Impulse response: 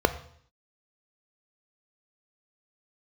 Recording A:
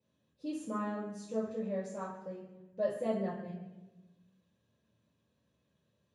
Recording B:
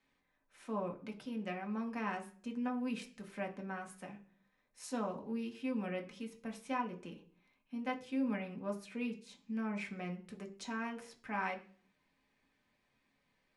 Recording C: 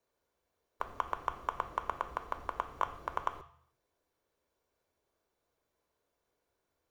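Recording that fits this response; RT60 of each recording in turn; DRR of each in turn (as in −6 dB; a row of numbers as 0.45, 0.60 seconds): C; 1.2, 0.45, 0.60 seconds; −7.5, 1.0, 10.5 decibels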